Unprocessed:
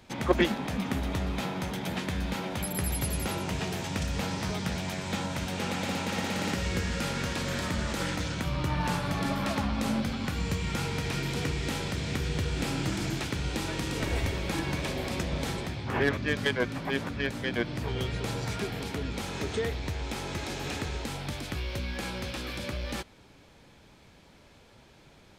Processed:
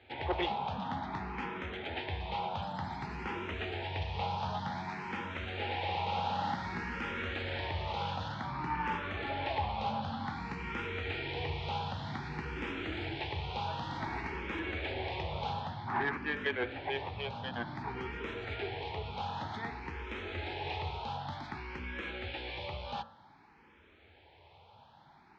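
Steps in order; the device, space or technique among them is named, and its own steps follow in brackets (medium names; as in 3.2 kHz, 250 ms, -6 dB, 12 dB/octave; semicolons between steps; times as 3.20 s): barber-pole phaser into a guitar amplifier (barber-pole phaser +0.54 Hz; saturation -24.5 dBFS, distortion -16 dB; cabinet simulation 82–3700 Hz, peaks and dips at 86 Hz +5 dB, 130 Hz -7 dB, 190 Hz -7 dB, 280 Hz -6 dB, 560 Hz -4 dB, 850 Hz +10 dB); de-hum 55.83 Hz, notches 32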